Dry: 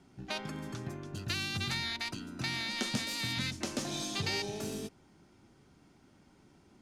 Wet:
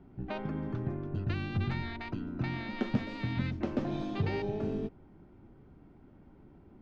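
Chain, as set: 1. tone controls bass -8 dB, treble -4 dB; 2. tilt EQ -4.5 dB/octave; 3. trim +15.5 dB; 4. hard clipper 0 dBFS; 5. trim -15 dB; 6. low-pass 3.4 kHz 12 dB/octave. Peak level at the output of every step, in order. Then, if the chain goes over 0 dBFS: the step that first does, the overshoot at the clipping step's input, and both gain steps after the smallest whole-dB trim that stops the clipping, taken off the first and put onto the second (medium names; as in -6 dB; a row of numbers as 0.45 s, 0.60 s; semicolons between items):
-21.0 dBFS, -17.5 dBFS, -2.0 dBFS, -2.0 dBFS, -17.0 dBFS, -17.0 dBFS; nothing clips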